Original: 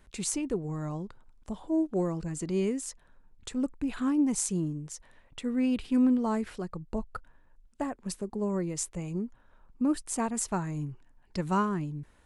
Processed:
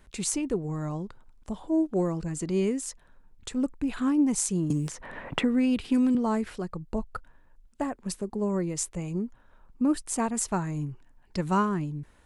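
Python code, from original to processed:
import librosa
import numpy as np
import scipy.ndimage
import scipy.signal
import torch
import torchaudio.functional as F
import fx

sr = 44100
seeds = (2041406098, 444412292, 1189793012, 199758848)

y = fx.band_squash(x, sr, depth_pct=100, at=(4.7, 6.15))
y = y * librosa.db_to_amplitude(2.5)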